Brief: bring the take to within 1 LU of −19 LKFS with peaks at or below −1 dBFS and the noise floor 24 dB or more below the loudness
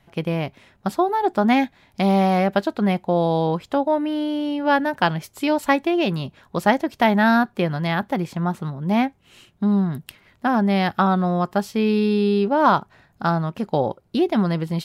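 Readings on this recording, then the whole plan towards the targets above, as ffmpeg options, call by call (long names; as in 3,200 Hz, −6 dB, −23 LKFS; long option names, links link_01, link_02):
integrated loudness −21.0 LKFS; sample peak −4.5 dBFS; target loudness −19.0 LKFS
→ -af "volume=2dB"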